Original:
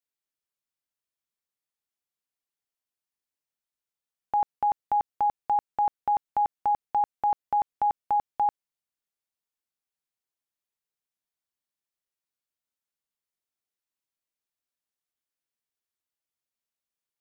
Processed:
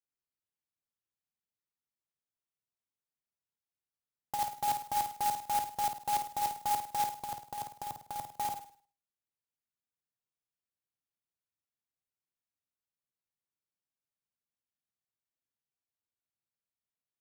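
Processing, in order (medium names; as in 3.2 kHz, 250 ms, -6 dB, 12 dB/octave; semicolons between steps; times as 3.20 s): peaking EQ 120 Hz +11 dB 2 oct; 7.14–8.26 s: compressor with a negative ratio -28 dBFS, ratio -0.5; flange 0.39 Hz, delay 7.3 ms, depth 2.9 ms, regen -77%; flutter echo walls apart 8.9 m, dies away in 0.46 s; sampling jitter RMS 0.071 ms; trim -5 dB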